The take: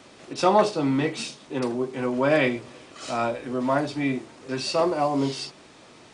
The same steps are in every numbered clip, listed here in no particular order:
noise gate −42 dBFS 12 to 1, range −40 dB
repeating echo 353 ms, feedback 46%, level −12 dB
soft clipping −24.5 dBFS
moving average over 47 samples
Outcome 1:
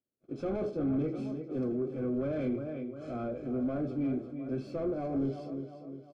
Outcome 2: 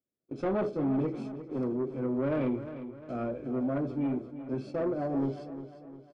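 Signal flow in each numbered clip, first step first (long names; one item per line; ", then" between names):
noise gate, then repeating echo, then soft clipping, then moving average
moving average, then noise gate, then soft clipping, then repeating echo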